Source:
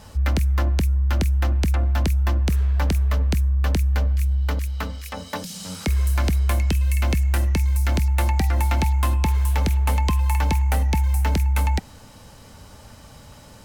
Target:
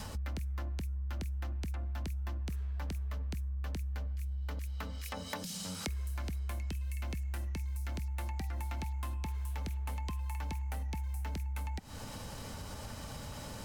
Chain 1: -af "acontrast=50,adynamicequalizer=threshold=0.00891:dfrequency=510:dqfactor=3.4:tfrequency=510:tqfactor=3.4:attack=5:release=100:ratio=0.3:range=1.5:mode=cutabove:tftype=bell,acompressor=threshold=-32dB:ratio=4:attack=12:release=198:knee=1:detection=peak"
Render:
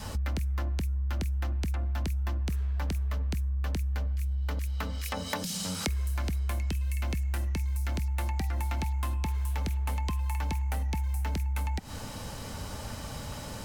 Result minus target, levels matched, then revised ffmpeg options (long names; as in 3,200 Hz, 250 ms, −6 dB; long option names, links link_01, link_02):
downward compressor: peak gain reduction −7 dB
-af "acontrast=50,adynamicequalizer=threshold=0.00891:dfrequency=510:dqfactor=3.4:tfrequency=510:tqfactor=3.4:attack=5:release=100:ratio=0.3:range=1.5:mode=cutabove:tftype=bell,acompressor=threshold=-41.5dB:ratio=4:attack=12:release=198:knee=1:detection=peak"